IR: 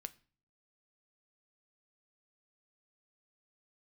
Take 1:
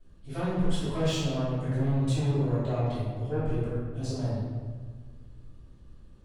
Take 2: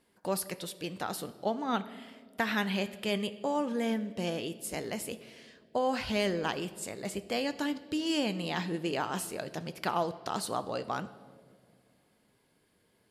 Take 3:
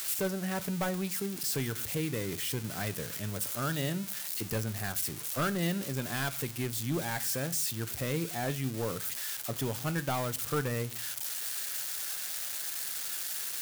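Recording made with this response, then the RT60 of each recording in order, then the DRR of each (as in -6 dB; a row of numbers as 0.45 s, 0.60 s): 3; 1.5 s, 2.4 s, 0.40 s; -14.5 dB, 12.0 dB, 11.0 dB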